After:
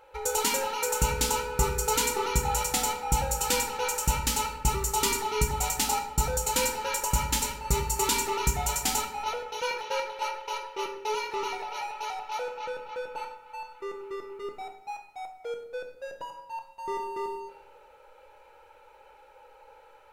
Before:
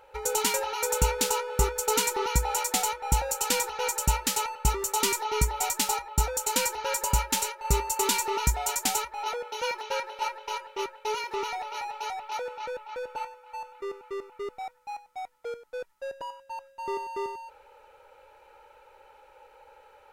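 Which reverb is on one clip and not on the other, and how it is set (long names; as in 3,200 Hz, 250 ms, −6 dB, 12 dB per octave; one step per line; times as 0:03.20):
rectangular room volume 230 cubic metres, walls mixed, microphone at 0.7 metres
level −1.5 dB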